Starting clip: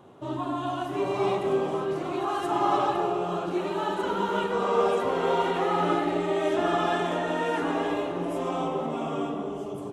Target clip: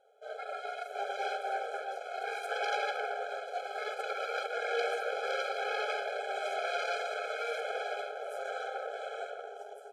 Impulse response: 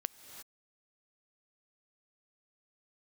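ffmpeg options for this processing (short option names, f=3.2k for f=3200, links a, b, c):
-filter_complex "[0:a]aeval=exprs='0.251*(cos(1*acos(clip(val(0)/0.251,-1,1)))-cos(1*PI/2))+0.126*(cos(6*acos(clip(val(0)/0.251,-1,1)))-cos(6*PI/2))':c=same[a];[1:a]atrim=start_sample=2205,atrim=end_sample=3528[b];[a][b]afir=irnorm=-1:irlink=0,afftfilt=real='re*eq(mod(floor(b*sr/1024/430),2),1)':imag='im*eq(mod(floor(b*sr/1024/430),2),1)':win_size=1024:overlap=0.75,volume=-8dB"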